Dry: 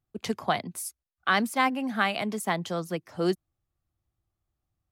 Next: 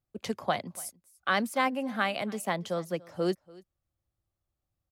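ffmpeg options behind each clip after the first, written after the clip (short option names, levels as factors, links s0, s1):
-af "equalizer=f=550:t=o:w=0.21:g=8.5,aecho=1:1:288:0.075,volume=0.668"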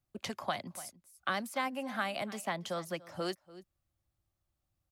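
-filter_complex "[0:a]equalizer=f=460:w=6.7:g=-10,acrossover=split=500|1200|5500[s0][s1][s2][s3];[s0]acompressor=threshold=0.00631:ratio=4[s4];[s1]acompressor=threshold=0.0112:ratio=4[s5];[s2]acompressor=threshold=0.0112:ratio=4[s6];[s3]acompressor=threshold=0.00355:ratio=4[s7];[s4][s5][s6][s7]amix=inputs=4:normalize=0,volume=1.19"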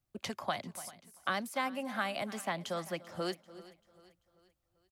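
-af "aecho=1:1:390|780|1170|1560:0.106|0.0487|0.0224|0.0103"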